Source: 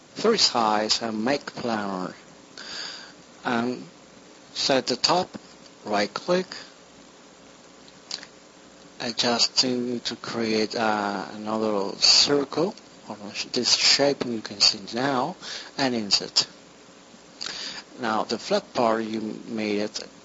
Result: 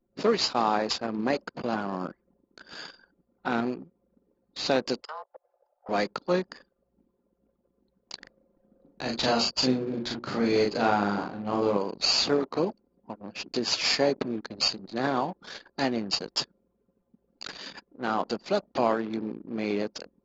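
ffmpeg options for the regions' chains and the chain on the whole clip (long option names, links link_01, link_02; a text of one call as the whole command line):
ffmpeg -i in.wav -filter_complex "[0:a]asettb=1/sr,asplit=3[link_01][link_02][link_03];[link_01]atrim=end=5.014[link_04];[link_02]atrim=start=5.01:end=5.89,asetpts=PTS-STARTPTS,afade=type=in:duration=0.004:curve=qsin,afade=type=out:start_time=0.876:duration=0.004:curve=qsin,highshelf=frequency=4100:gain=-9.5,acompressor=threshold=-42dB:ratio=2:attack=3.2:release=140:knee=1:detection=peak,afreqshift=310[link_05];[link_03]atrim=start=5.886[link_06];[link_04][link_05]acrossfade=duration=0.004:curve1=hsin:curve2=qsin[link_07];[link_07][link_06]acrossfade=duration=0.004:curve1=qsin:curve2=hsin,asettb=1/sr,asplit=3[link_08][link_09][link_10];[link_08]atrim=end=8.194[link_11];[link_09]atrim=start=8.19:end=11.77,asetpts=PTS-STARTPTS,afade=type=in:duration=0.004:curve=qsin,afade=type=out:start_time=3.576:duration=0.004:curve=qsin,lowshelf=frequency=170:gain=7.5,bandreject=frequency=60:width_type=h:width=6,bandreject=frequency=120:width_type=h:width=6,bandreject=frequency=180:width_type=h:width=6,bandreject=frequency=240:width_type=h:width=6,bandreject=frequency=300:width_type=h:width=6,bandreject=frequency=360:width_type=h:width=6,bandreject=frequency=420:width_type=h:width=6,asplit=2[link_12][link_13];[link_13]adelay=39,volume=-2.5dB[link_14];[link_12][link_14]amix=inputs=2:normalize=0,atrim=end_sample=157878[link_15];[link_10]atrim=start=11.766[link_16];[link_11][link_15]acrossfade=duration=0.004:curve1=hsin:curve2=qsin[link_17];[link_17][link_16]acrossfade=duration=0.004:curve1=qsin:curve2=hsin,aemphasis=mode=reproduction:type=50fm,anlmdn=1.58,volume=-3dB" out.wav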